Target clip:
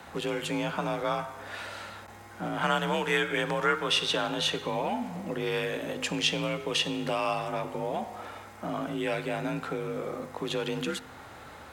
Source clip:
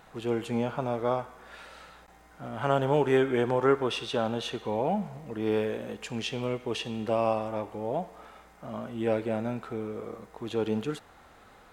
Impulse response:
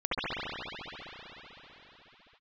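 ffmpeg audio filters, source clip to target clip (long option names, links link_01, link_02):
-filter_complex "[0:a]afreqshift=40,bandreject=frequency=51.48:width_type=h:width=4,bandreject=frequency=102.96:width_type=h:width=4,bandreject=frequency=154.44:width_type=h:width=4,bandreject=frequency=205.92:width_type=h:width=4,bandreject=frequency=257.4:width_type=h:width=4,bandreject=frequency=308.88:width_type=h:width=4,bandreject=frequency=360.36:width_type=h:width=4,bandreject=frequency=411.84:width_type=h:width=4,bandreject=frequency=463.32:width_type=h:width=4,bandreject=frequency=514.8:width_type=h:width=4,bandreject=frequency=566.28:width_type=h:width=4,bandreject=frequency=617.76:width_type=h:width=4,bandreject=frequency=669.24:width_type=h:width=4,bandreject=frequency=720.72:width_type=h:width=4,bandreject=frequency=772.2:width_type=h:width=4,bandreject=frequency=823.68:width_type=h:width=4,bandreject=frequency=875.16:width_type=h:width=4,bandreject=frequency=926.64:width_type=h:width=4,bandreject=frequency=978.12:width_type=h:width=4,bandreject=frequency=1029.6:width_type=h:width=4,bandreject=frequency=1081.08:width_type=h:width=4,bandreject=frequency=1132.56:width_type=h:width=4,bandreject=frequency=1184.04:width_type=h:width=4,bandreject=frequency=1235.52:width_type=h:width=4,bandreject=frequency=1287:width_type=h:width=4,bandreject=frequency=1338.48:width_type=h:width=4,bandreject=frequency=1389.96:width_type=h:width=4,bandreject=frequency=1441.44:width_type=h:width=4,bandreject=frequency=1492.92:width_type=h:width=4,bandreject=frequency=1544.4:width_type=h:width=4,bandreject=frequency=1595.88:width_type=h:width=4,acrossover=split=110|1300|2300[link_01][link_02][link_03][link_04];[link_02]acompressor=threshold=-39dB:ratio=6[link_05];[link_01][link_05][link_03][link_04]amix=inputs=4:normalize=0,volume=8.5dB"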